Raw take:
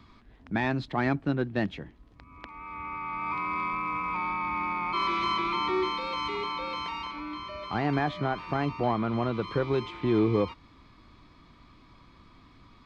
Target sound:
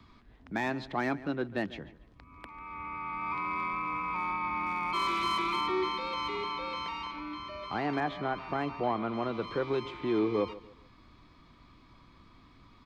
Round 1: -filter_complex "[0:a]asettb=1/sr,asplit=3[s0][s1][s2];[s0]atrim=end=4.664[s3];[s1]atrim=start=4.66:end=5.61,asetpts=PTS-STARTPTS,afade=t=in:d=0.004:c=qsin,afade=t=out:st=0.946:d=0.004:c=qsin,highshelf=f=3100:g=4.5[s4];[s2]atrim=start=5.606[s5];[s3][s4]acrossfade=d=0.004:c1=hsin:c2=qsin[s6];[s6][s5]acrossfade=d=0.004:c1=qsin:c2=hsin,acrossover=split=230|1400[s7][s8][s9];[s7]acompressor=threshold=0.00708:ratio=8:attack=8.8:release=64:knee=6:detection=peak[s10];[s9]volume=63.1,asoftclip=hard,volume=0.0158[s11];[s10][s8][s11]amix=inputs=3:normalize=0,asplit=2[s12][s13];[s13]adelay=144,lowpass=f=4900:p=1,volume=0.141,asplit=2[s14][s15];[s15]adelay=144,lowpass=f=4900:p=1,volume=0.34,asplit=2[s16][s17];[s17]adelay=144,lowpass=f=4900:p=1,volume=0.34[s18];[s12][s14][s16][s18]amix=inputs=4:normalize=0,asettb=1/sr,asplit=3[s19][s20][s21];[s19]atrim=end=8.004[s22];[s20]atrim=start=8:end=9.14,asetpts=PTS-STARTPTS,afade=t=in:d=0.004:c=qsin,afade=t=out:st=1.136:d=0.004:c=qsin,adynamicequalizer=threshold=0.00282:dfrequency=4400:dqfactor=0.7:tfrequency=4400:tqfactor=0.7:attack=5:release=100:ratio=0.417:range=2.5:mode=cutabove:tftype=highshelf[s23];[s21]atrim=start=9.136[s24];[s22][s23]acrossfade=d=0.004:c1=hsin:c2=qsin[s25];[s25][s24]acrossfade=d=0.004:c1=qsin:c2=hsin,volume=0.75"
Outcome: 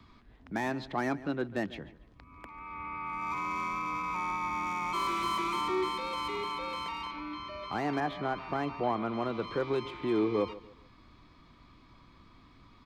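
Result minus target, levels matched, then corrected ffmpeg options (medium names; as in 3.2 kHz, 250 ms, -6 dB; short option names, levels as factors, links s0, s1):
overload inside the chain: distortion +10 dB
-filter_complex "[0:a]asettb=1/sr,asplit=3[s0][s1][s2];[s0]atrim=end=4.664[s3];[s1]atrim=start=4.66:end=5.61,asetpts=PTS-STARTPTS,afade=t=in:d=0.004:c=qsin,afade=t=out:st=0.946:d=0.004:c=qsin,highshelf=f=3100:g=4.5[s4];[s2]atrim=start=5.606[s5];[s3][s4]acrossfade=d=0.004:c1=hsin:c2=qsin[s6];[s6][s5]acrossfade=d=0.004:c1=qsin:c2=hsin,acrossover=split=230|1400[s7][s8][s9];[s7]acompressor=threshold=0.00708:ratio=8:attack=8.8:release=64:knee=6:detection=peak[s10];[s9]volume=29.9,asoftclip=hard,volume=0.0335[s11];[s10][s8][s11]amix=inputs=3:normalize=0,asplit=2[s12][s13];[s13]adelay=144,lowpass=f=4900:p=1,volume=0.141,asplit=2[s14][s15];[s15]adelay=144,lowpass=f=4900:p=1,volume=0.34,asplit=2[s16][s17];[s17]adelay=144,lowpass=f=4900:p=1,volume=0.34[s18];[s12][s14][s16][s18]amix=inputs=4:normalize=0,asettb=1/sr,asplit=3[s19][s20][s21];[s19]atrim=end=8.004[s22];[s20]atrim=start=8:end=9.14,asetpts=PTS-STARTPTS,afade=t=in:d=0.004:c=qsin,afade=t=out:st=1.136:d=0.004:c=qsin,adynamicequalizer=threshold=0.00282:dfrequency=4400:dqfactor=0.7:tfrequency=4400:tqfactor=0.7:attack=5:release=100:ratio=0.417:range=2.5:mode=cutabove:tftype=highshelf[s23];[s21]atrim=start=9.136[s24];[s22][s23]acrossfade=d=0.004:c1=hsin:c2=qsin[s25];[s25][s24]acrossfade=d=0.004:c1=qsin:c2=hsin,volume=0.75"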